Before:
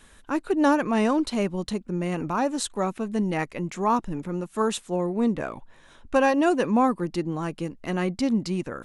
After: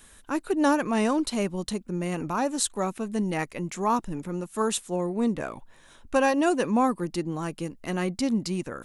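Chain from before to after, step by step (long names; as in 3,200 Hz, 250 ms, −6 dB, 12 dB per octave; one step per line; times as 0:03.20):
high-shelf EQ 7,100 Hz +12 dB
level −2 dB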